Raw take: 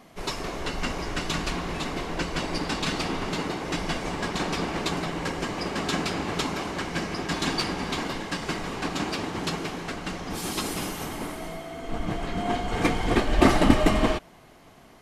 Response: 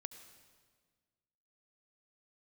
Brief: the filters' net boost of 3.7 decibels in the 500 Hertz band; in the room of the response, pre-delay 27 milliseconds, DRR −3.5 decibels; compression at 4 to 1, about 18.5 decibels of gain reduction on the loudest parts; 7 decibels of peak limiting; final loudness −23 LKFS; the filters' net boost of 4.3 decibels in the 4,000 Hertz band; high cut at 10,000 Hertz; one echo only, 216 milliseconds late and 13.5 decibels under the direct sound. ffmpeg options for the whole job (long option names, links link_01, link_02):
-filter_complex "[0:a]lowpass=10000,equalizer=frequency=500:width_type=o:gain=5,equalizer=frequency=4000:width_type=o:gain=5.5,acompressor=threshold=-34dB:ratio=4,alimiter=level_in=2.5dB:limit=-24dB:level=0:latency=1,volume=-2.5dB,aecho=1:1:216:0.211,asplit=2[link_01][link_02];[1:a]atrim=start_sample=2205,adelay=27[link_03];[link_02][link_03]afir=irnorm=-1:irlink=0,volume=7.5dB[link_04];[link_01][link_04]amix=inputs=2:normalize=0,volume=9dB"